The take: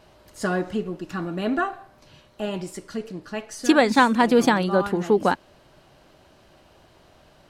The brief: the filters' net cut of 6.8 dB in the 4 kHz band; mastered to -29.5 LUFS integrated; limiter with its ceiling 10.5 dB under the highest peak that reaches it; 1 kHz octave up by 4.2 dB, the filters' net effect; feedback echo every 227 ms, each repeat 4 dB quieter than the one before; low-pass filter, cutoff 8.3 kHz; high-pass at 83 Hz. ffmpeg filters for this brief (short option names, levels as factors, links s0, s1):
-af "highpass=83,lowpass=8300,equalizer=f=1000:t=o:g=5.5,equalizer=f=4000:t=o:g=-9,alimiter=limit=0.224:level=0:latency=1,aecho=1:1:227|454|681|908|1135|1362|1589|1816|2043:0.631|0.398|0.25|0.158|0.0994|0.0626|0.0394|0.0249|0.0157,volume=0.531"